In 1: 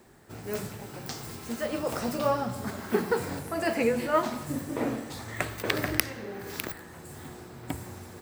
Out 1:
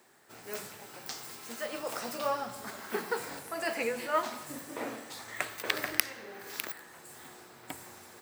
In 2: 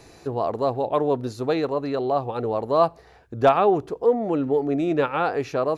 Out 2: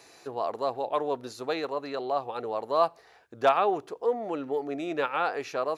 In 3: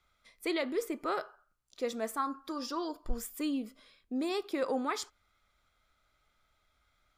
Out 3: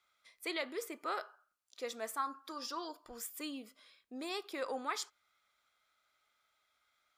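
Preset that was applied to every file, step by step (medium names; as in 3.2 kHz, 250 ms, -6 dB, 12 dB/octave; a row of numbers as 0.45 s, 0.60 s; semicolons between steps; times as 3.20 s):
high-pass 890 Hz 6 dB/octave; trim -1 dB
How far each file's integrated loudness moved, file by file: -5.0 LU, -6.5 LU, -5.5 LU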